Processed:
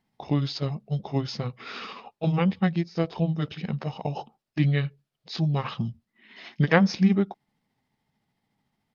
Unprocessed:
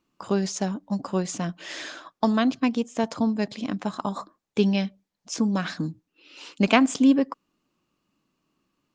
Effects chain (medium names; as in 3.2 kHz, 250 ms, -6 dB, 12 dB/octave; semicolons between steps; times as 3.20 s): rotating-head pitch shifter -5.5 st